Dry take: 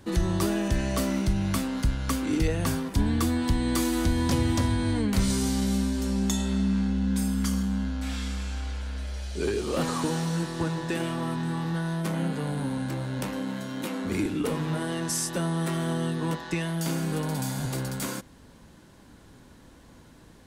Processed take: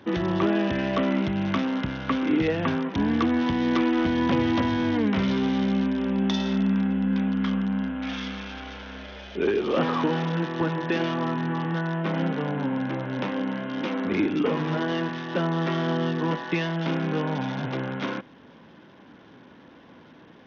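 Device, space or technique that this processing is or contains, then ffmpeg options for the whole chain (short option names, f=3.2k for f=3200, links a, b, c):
Bluetooth headset: -af "highpass=190,aresample=8000,aresample=44100,volume=5dB" -ar 48000 -c:a sbc -b:a 64k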